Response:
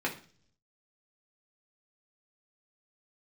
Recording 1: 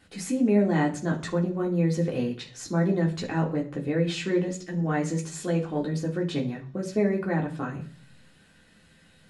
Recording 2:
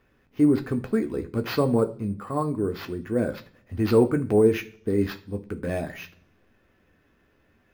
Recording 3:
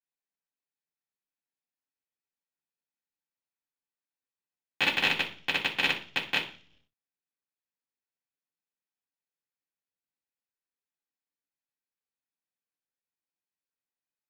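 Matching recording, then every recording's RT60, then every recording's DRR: 1; 0.45, 0.45, 0.45 s; -2.5, 5.5, -12.0 dB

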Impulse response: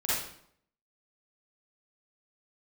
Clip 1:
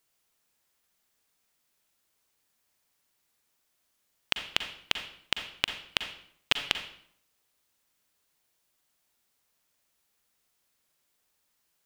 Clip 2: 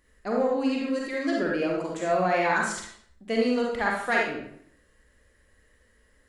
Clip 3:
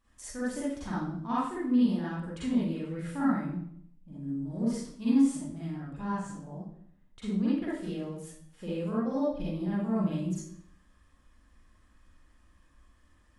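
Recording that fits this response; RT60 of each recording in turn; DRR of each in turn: 3; 0.65, 0.65, 0.65 s; 6.5, -2.0, -10.0 dB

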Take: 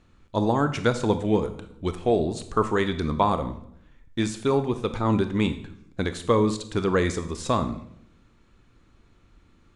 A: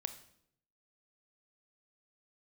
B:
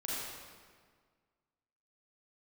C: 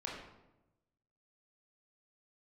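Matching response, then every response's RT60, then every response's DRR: A; 0.70, 1.7, 0.95 s; 9.5, -7.0, -4.0 dB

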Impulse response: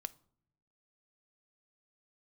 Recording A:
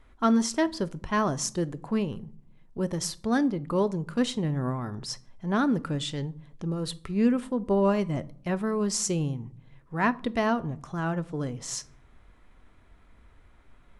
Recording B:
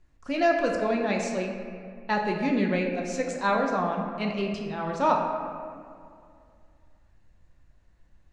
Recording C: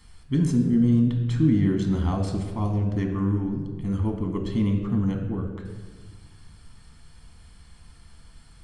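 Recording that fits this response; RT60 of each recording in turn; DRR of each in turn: A; not exponential, 2.3 s, 1.5 s; 13.5, 0.5, 3.0 dB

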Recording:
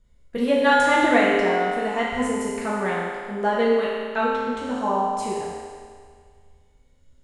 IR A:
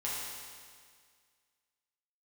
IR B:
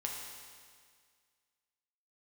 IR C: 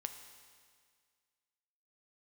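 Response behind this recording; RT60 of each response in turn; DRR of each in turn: A; 1.9, 1.9, 1.9 s; -8.0, -1.5, 6.5 dB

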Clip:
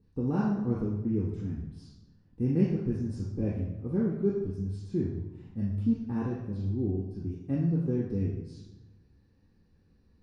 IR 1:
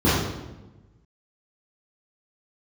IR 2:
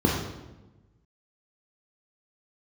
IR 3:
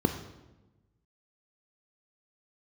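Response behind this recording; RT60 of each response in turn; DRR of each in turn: 2; 1.1, 1.1, 1.1 s; -10.0, -1.0, 7.5 dB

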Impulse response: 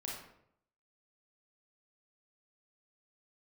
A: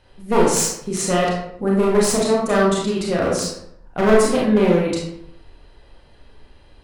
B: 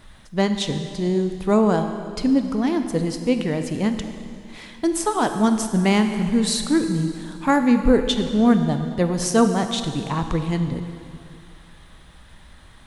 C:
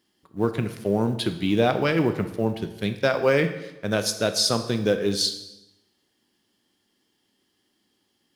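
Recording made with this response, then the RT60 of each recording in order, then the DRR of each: A; 0.70, 2.4, 0.95 s; -4.0, 7.0, 8.0 dB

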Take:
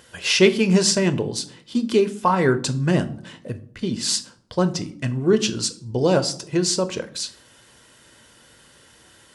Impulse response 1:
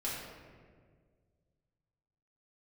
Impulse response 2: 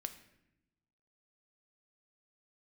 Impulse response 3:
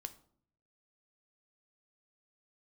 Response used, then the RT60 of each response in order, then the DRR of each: 3; 1.8, 0.85, 0.60 s; -7.5, 8.0, 9.5 dB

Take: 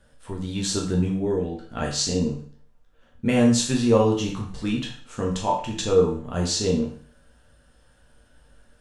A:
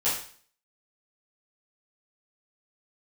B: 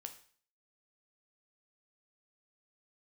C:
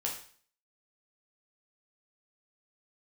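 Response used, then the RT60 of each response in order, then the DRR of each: C; 0.45, 0.45, 0.45 s; -12.0, 6.0, -2.0 dB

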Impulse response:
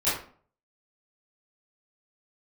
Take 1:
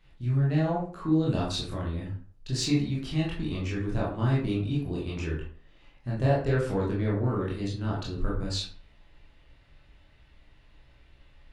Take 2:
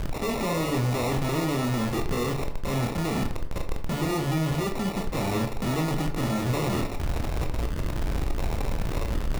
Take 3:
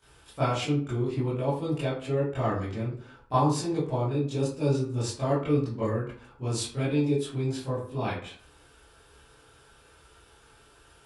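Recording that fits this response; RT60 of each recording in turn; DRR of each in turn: 3; 0.45, 0.45, 0.45 s; -5.5, 4.0, -14.0 dB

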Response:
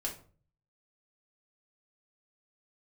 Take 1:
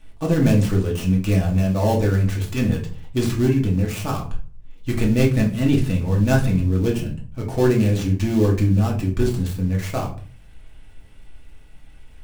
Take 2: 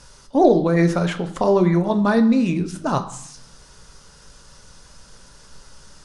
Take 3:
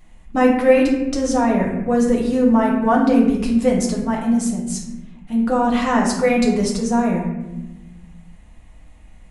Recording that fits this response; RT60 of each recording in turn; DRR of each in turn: 1; 0.45, 0.65, 1.0 s; -2.0, 7.0, -3.0 dB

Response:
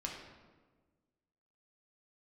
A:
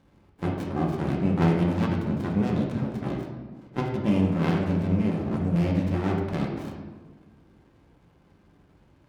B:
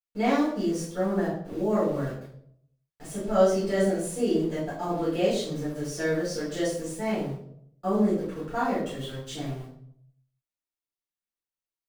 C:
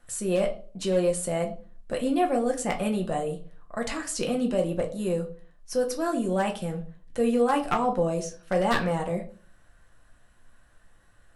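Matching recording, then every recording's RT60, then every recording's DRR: A; 1.4, 0.65, 0.45 s; -1.5, -12.0, 2.0 dB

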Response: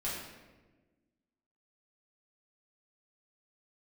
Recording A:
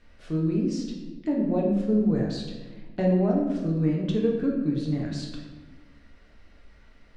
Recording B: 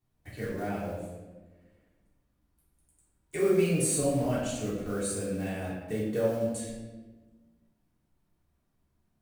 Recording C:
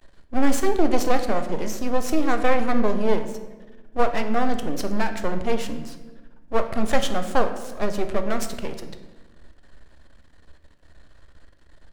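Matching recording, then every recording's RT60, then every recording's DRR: B; 1.3, 1.3, 1.3 s; -2.5, -8.5, 6.5 dB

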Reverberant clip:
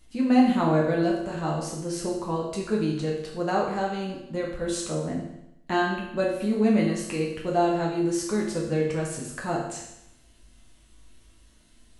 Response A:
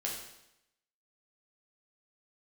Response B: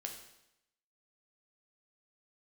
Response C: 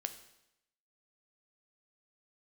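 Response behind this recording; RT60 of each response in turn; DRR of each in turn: A; 0.85, 0.85, 0.85 s; -3.5, 2.0, 8.0 dB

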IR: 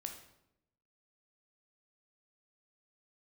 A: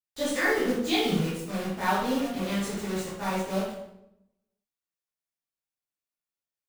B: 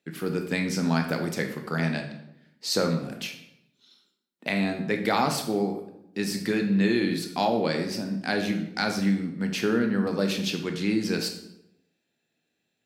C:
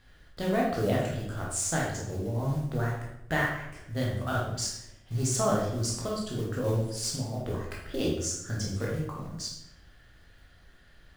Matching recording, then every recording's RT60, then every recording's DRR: B; 0.85, 0.85, 0.85 s; -11.0, 4.0, -4.0 dB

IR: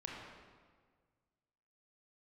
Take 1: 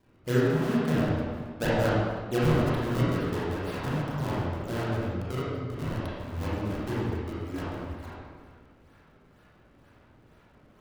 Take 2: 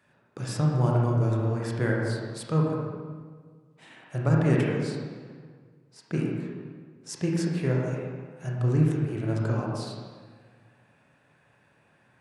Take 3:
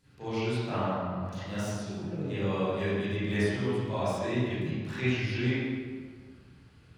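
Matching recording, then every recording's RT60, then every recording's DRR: 2; 1.6, 1.7, 1.6 s; -10.0, -3.0, -15.0 dB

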